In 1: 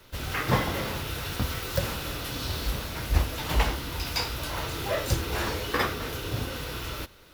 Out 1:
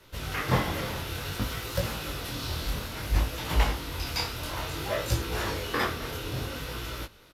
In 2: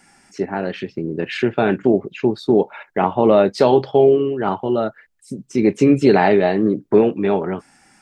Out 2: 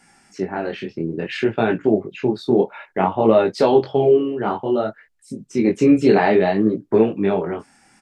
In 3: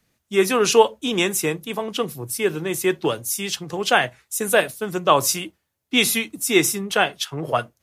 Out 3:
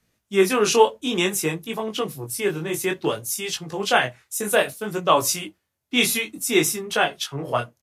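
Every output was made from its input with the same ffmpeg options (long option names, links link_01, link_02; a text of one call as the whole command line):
ffmpeg -i in.wav -af "aresample=32000,aresample=44100,flanger=delay=17.5:depth=7.6:speed=0.58,volume=1.5dB" out.wav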